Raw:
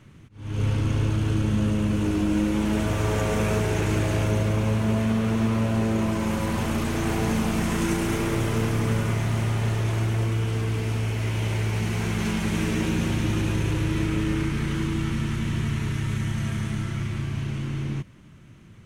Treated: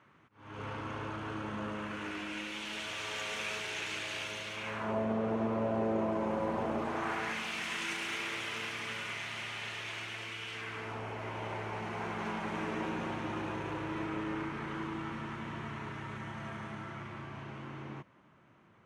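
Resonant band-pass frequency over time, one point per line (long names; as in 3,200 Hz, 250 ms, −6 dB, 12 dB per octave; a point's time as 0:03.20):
resonant band-pass, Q 1.3
0:01.66 1,100 Hz
0:02.61 3,200 Hz
0:04.54 3,200 Hz
0:05.02 630 Hz
0:06.77 630 Hz
0:07.47 2,700 Hz
0:10.50 2,700 Hz
0:10.99 890 Hz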